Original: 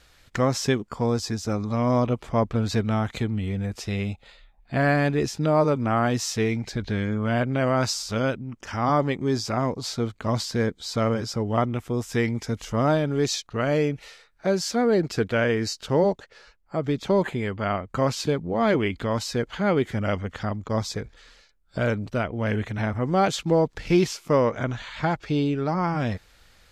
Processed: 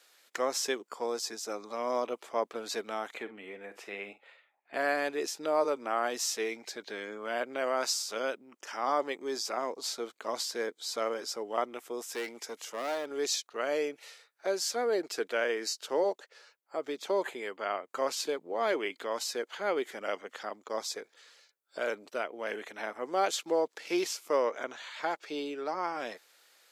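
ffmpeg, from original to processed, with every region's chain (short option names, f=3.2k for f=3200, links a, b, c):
-filter_complex "[0:a]asettb=1/sr,asplit=3[a][b][c];[a]atrim=end=3.144[d];[b]atrim=start=3.14:end=4.74,asetpts=PTS-STARTPTS,afade=t=in:d=0.004:c=qsin,afade=t=out:st=1.596:d=0.004:c=qsin,highshelf=f=3.3k:t=q:w=1.5:g=-11.5,asplit=2[e][f];[f]adelay=49,volume=-13dB[g];[e][g]amix=inputs=2:normalize=0,atrim=end_sample=70560[h];[c]atrim=start=4.736[i];[d][h]acrossfade=d=0.004:c1=hsin:c2=qsin[j];[j][i]acrossfade=d=0.004:c1=qsin:c2=hsin,asettb=1/sr,asplit=3[k][l][m];[k]atrim=end=12.144[n];[l]atrim=start=12.14:end=13.11,asetpts=PTS-STARTPTS,afade=t=in:d=0.004:c=qsin,afade=t=out:st=0.966:d=0.004:c=qsin,highpass=79,lowshelf=f=160:g=-5,asoftclip=type=hard:threshold=-22.5dB[o];[m]atrim=start=13.106[p];[n][o]acrossfade=d=0.004:c1=hsin:c2=qsin[q];[q][p]acrossfade=d=0.004:c1=qsin:c2=hsin,highpass=f=360:w=0.5412,highpass=f=360:w=1.3066,highshelf=f=7.4k:g=10.5,volume=-6.5dB"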